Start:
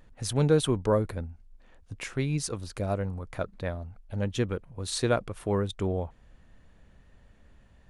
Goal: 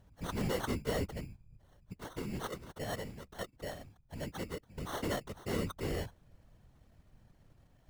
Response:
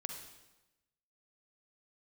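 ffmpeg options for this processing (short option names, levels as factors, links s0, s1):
-filter_complex "[0:a]asoftclip=type=hard:threshold=0.0562,asettb=1/sr,asplit=3[s0][s1][s2];[s0]atrim=end=1.934[s3];[s1]atrim=start=1.93:end=4.69,asetpts=PTS-STARTPTS,afade=t=in:d=0.004:c=qsin,afade=t=out:st=2.756:d=0.004:c=qsin,lowshelf=f=160:g=-10[s4];[s2]atrim=start=4.686[s5];[s3][s4]acrossfade=d=0.004:c1=hsin:c2=qsin[s6];[s6][s5]acrossfade=d=0.004:c1=qsin:c2=hsin,acrusher=samples=18:mix=1:aa=0.000001,afftfilt=real='hypot(re,im)*cos(2*PI*random(0))':imag='hypot(re,im)*sin(2*PI*random(1))':win_size=512:overlap=0.75"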